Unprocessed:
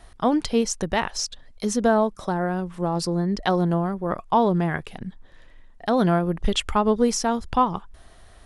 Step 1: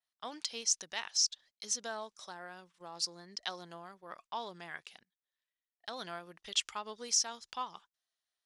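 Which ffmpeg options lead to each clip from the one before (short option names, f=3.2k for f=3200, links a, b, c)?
-af "adynamicequalizer=threshold=0.00562:dfrequency=6100:dqfactor=1.8:tfrequency=6100:tqfactor=1.8:attack=5:release=100:ratio=0.375:range=3:mode=boostabove:tftype=bell,bandpass=f=4.8k:t=q:w=0.96:csg=0,agate=range=-24dB:threshold=-53dB:ratio=16:detection=peak,volume=-5dB"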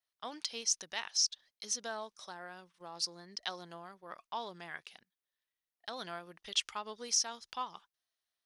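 -af "equalizer=f=7.4k:w=7:g=-8.5"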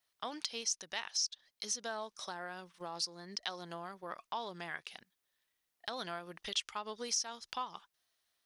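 -af "acompressor=threshold=-51dB:ratio=2,volume=8.5dB"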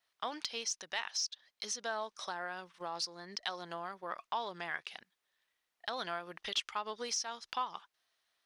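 -filter_complex "[0:a]asplit=2[a][b];[b]highpass=f=720:p=1,volume=8dB,asoftclip=type=tanh:threshold=-18dB[c];[a][c]amix=inputs=2:normalize=0,lowpass=f=2.9k:p=1,volume=-6dB,volume=1dB"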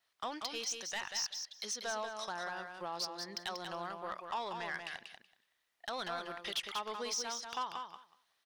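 -filter_complex "[0:a]asoftclip=type=tanh:threshold=-31.5dB,asplit=2[a][b];[b]aecho=0:1:188|376|564:0.501|0.0752|0.0113[c];[a][c]amix=inputs=2:normalize=0,volume=1dB"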